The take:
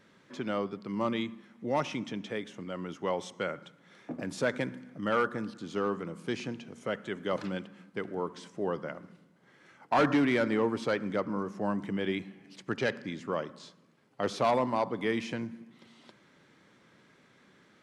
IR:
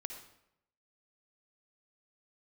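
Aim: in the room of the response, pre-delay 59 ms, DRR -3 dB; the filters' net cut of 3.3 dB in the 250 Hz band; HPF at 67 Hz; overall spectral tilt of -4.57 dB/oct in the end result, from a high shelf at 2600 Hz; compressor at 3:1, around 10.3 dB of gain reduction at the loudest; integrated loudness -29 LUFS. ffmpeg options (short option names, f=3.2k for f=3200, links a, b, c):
-filter_complex "[0:a]highpass=67,equalizer=f=250:t=o:g=-4,highshelf=f=2.6k:g=-4.5,acompressor=threshold=-37dB:ratio=3,asplit=2[a][b];[1:a]atrim=start_sample=2205,adelay=59[c];[b][c]afir=irnorm=-1:irlink=0,volume=5dB[d];[a][d]amix=inputs=2:normalize=0,volume=7.5dB"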